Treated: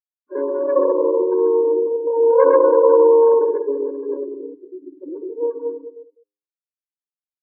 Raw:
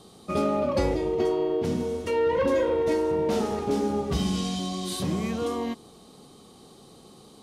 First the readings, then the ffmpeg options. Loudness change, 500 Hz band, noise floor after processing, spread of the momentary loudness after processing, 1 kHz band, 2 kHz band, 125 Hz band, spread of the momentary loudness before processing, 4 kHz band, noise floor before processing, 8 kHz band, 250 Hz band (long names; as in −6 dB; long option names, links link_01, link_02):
+10.0 dB, +11.0 dB, below −85 dBFS, 20 LU, +7.0 dB, can't be measured, below −35 dB, 6 LU, below −40 dB, −52 dBFS, below −40 dB, 0.0 dB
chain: -filter_complex "[0:a]adynamicequalizer=threshold=0.01:dfrequency=540:dqfactor=2:tfrequency=540:tqfactor=2:attack=5:release=100:ratio=0.375:range=3.5:mode=boostabove:tftype=bell,aeval=exprs='val(0)+0.00631*(sin(2*PI*60*n/s)+sin(2*PI*2*60*n/s)/2+sin(2*PI*3*60*n/s)/3+sin(2*PI*4*60*n/s)/4+sin(2*PI*5*60*n/s)/5)':channel_layout=same,asplit=2[link_01][link_02];[link_02]aecho=0:1:130|234|317.2|383.8|437:0.631|0.398|0.251|0.158|0.1[link_03];[link_01][link_03]amix=inputs=2:normalize=0,afftfilt=real='re*gte(hypot(re,im),0.178)':imag='im*gte(hypot(re,im),0.178)':win_size=1024:overlap=0.75,highshelf=frequency=2000:gain=10,asplit=2[link_04][link_05];[link_05]aecho=0:1:202:0.15[link_06];[link_04][link_06]amix=inputs=2:normalize=0,aeval=exprs='0.562*(cos(1*acos(clip(val(0)/0.562,-1,1)))-cos(1*PI/2))+0.251*(cos(2*acos(clip(val(0)/0.562,-1,1)))-cos(2*PI/2))':channel_layout=same,bandreject=frequency=102.6:width_type=h:width=4,bandreject=frequency=205.2:width_type=h:width=4,bandreject=frequency=307.8:width_type=h:width=4,bandreject=frequency=410.4:width_type=h:width=4,bandreject=frequency=513:width_type=h:width=4,bandreject=frequency=615.6:width_type=h:width=4,bandreject=frequency=718.2:width_type=h:width=4,bandreject=frequency=820.8:width_type=h:width=4,bandreject=frequency=923.4:width_type=h:width=4,bandreject=frequency=1026:width_type=h:width=4,bandreject=frequency=1128.6:width_type=h:width=4,bandreject=frequency=1231.2:width_type=h:width=4,bandreject=frequency=1333.8:width_type=h:width=4,bandreject=frequency=1436.4:width_type=h:width=4,bandreject=frequency=1539:width_type=h:width=4,afftfilt=real='re*eq(mod(floor(b*sr/1024/290),2),1)':imag='im*eq(mod(floor(b*sr/1024/290),2),1)':win_size=1024:overlap=0.75,volume=2.5dB"